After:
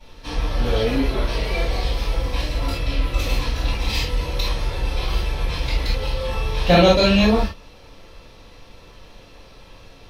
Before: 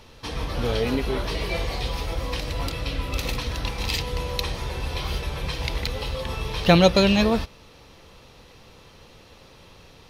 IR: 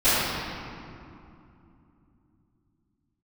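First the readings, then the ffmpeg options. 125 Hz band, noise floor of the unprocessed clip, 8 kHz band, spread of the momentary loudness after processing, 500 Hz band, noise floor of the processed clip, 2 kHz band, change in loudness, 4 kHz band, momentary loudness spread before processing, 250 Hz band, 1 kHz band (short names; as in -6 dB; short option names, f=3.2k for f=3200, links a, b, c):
+3.0 dB, -50 dBFS, 0.0 dB, 11 LU, +3.0 dB, -45 dBFS, +2.5 dB, +3.0 dB, +2.5 dB, 12 LU, +2.5 dB, +3.0 dB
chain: -filter_complex "[1:a]atrim=start_sample=2205,atrim=end_sample=3969[a];[0:a][a]afir=irnorm=-1:irlink=0,volume=-13.5dB"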